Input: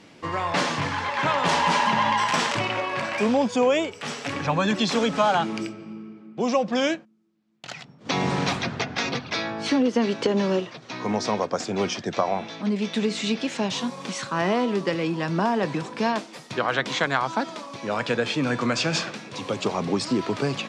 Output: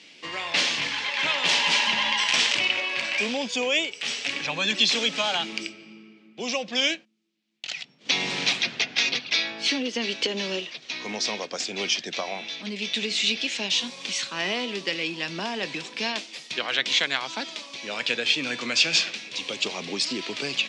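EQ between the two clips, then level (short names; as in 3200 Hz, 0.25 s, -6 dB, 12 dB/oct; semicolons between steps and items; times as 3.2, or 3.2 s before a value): HPF 220 Hz 12 dB/oct; LPF 7100 Hz 12 dB/oct; resonant high shelf 1800 Hz +12.5 dB, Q 1.5; -7.0 dB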